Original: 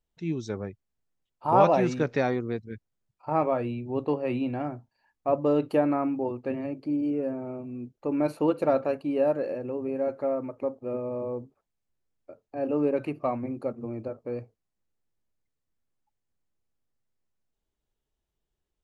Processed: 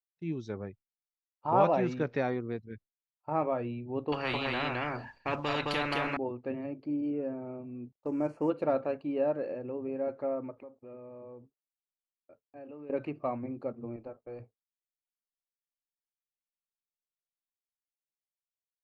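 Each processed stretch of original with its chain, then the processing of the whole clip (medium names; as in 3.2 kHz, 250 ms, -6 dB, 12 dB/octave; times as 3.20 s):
4.12–6.17 s: delay 215 ms -3.5 dB + spectrum-flattening compressor 4:1
7.92–8.50 s: CVSD coder 64 kbps + touch-sensitive phaser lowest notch 250 Hz, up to 3.8 kHz, full sweep at -32 dBFS
10.57–12.90 s: low-pass 3.2 kHz + treble shelf 2.2 kHz +11 dB + compression 4:1, threshold -41 dBFS
13.96–14.40 s: bass shelf 270 Hz -8.5 dB + upward compressor, threshold -55 dBFS + AM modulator 240 Hz, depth 35%
whole clip: low-pass 4 kHz 12 dB/octave; expander -42 dBFS; trim -5 dB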